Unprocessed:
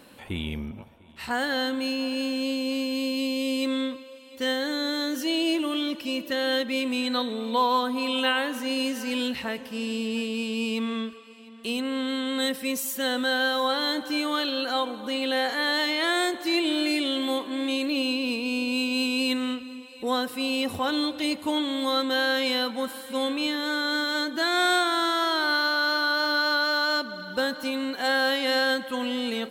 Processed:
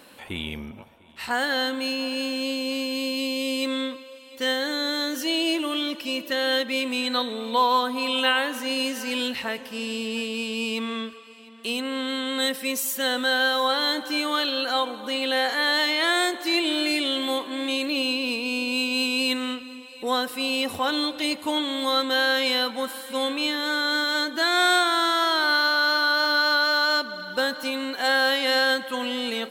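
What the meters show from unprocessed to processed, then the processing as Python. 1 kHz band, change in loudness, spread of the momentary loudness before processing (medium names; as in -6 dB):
+2.5 dB, +2.0 dB, 8 LU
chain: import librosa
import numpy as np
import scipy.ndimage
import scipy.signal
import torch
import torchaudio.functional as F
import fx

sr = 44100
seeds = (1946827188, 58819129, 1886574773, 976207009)

y = fx.low_shelf(x, sr, hz=310.0, db=-9.0)
y = F.gain(torch.from_numpy(y), 3.5).numpy()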